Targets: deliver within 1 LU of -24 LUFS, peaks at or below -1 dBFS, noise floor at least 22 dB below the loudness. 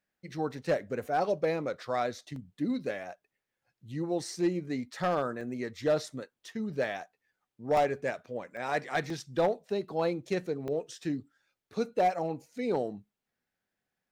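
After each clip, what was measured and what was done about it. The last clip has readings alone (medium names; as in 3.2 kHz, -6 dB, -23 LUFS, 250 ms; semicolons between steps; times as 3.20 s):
clipped samples 0.4%; clipping level -20.0 dBFS; dropouts 6; longest dropout 2.5 ms; loudness -32.5 LUFS; peak level -20.0 dBFS; loudness target -24.0 LUFS
-> clip repair -20 dBFS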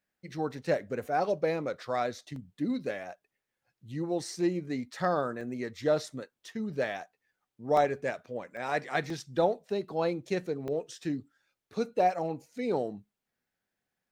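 clipped samples 0.0%; dropouts 6; longest dropout 2.5 ms
-> interpolate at 2.36/5.41/7.77/8.57/9.10/10.68 s, 2.5 ms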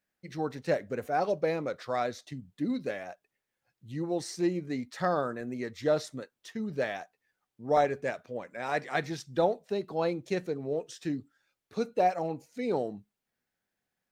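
dropouts 0; loudness -32.0 LUFS; peak level -13.5 dBFS; loudness target -24.0 LUFS
-> trim +8 dB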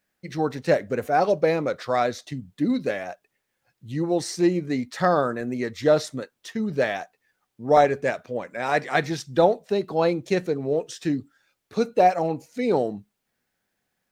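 loudness -24.0 LUFS; peak level -5.5 dBFS; noise floor -78 dBFS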